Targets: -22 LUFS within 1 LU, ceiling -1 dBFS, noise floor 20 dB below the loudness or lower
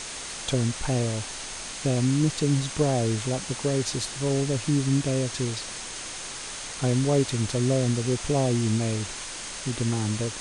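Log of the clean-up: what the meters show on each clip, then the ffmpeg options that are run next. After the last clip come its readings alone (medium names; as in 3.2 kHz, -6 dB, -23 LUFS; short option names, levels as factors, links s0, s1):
steady tone 6.4 kHz; tone level -44 dBFS; noise floor -37 dBFS; noise floor target -47 dBFS; loudness -26.5 LUFS; peak level -11.0 dBFS; loudness target -22.0 LUFS
-> -af "bandreject=f=6400:w=30"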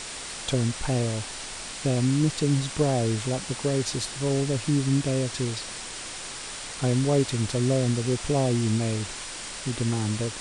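steady tone not found; noise floor -37 dBFS; noise floor target -47 dBFS
-> -af "afftdn=nr=10:nf=-37"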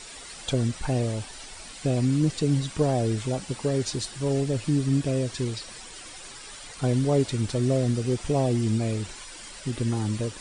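noise floor -43 dBFS; noise floor target -47 dBFS
-> -af "afftdn=nr=6:nf=-43"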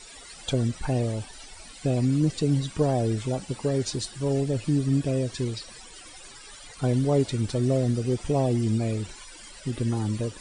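noise floor -46 dBFS; noise floor target -47 dBFS
-> -af "afftdn=nr=6:nf=-46"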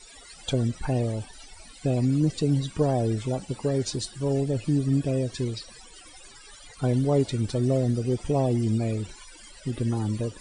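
noise floor -49 dBFS; loudness -26.5 LUFS; peak level -11.5 dBFS; loudness target -22.0 LUFS
-> -af "volume=1.68"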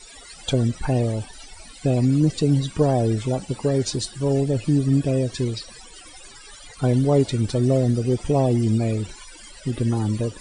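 loudness -22.0 LUFS; peak level -7.0 dBFS; noise floor -44 dBFS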